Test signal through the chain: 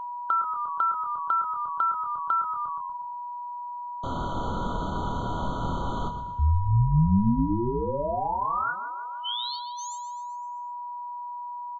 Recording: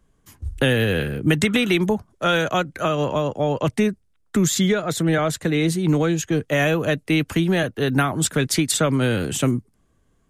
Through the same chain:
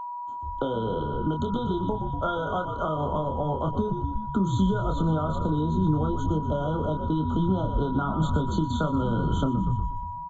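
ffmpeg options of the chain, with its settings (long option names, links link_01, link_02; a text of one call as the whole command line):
ffmpeg -i in.wav -filter_complex "[0:a]asplit=2[link_01][link_02];[link_02]adelay=26,volume=-5dB[link_03];[link_01][link_03]amix=inputs=2:normalize=0,agate=range=-33dB:threshold=-44dB:ratio=3:detection=peak,acrossover=split=200 2500:gain=0.158 1 0.0891[link_04][link_05][link_06];[link_04][link_05][link_06]amix=inputs=3:normalize=0,asplit=7[link_07][link_08][link_09][link_10][link_11][link_12][link_13];[link_08]adelay=120,afreqshift=-70,volume=-11dB[link_14];[link_09]adelay=240,afreqshift=-140,volume=-16.4dB[link_15];[link_10]adelay=360,afreqshift=-210,volume=-21.7dB[link_16];[link_11]adelay=480,afreqshift=-280,volume=-27.1dB[link_17];[link_12]adelay=600,afreqshift=-350,volume=-32.4dB[link_18];[link_13]adelay=720,afreqshift=-420,volume=-37.8dB[link_19];[link_07][link_14][link_15][link_16][link_17][link_18][link_19]amix=inputs=7:normalize=0,acompressor=threshold=-24dB:ratio=6,aresample=16000,aresample=44100,aeval=exprs='val(0)+0.0251*sin(2*PI*970*n/s)':channel_layout=same,asubboost=boost=5.5:cutoff=160,afftfilt=real='re*eq(mod(floor(b*sr/1024/1500),2),0)':imag='im*eq(mod(floor(b*sr/1024/1500),2),0)':win_size=1024:overlap=0.75" out.wav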